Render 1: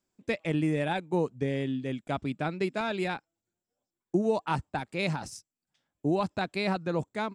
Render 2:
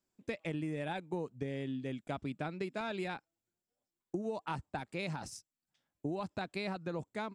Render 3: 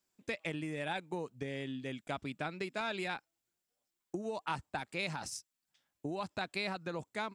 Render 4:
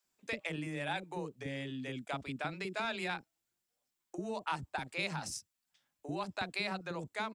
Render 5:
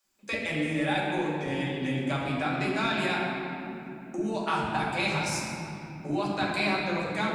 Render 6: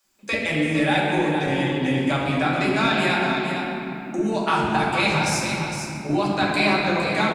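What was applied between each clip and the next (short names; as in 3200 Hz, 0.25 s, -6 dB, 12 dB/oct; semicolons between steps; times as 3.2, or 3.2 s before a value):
compressor, threshold -30 dBFS, peak gain reduction 9 dB; gain -4 dB
tilt shelf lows -4.5 dB, about 760 Hz; gain +1 dB
bands offset in time highs, lows 40 ms, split 430 Hz; gain +1 dB
reverb RT60 3.5 s, pre-delay 4 ms, DRR -5 dB; gain +3.5 dB
echo 0.459 s -7.5 dB; gain +7 dB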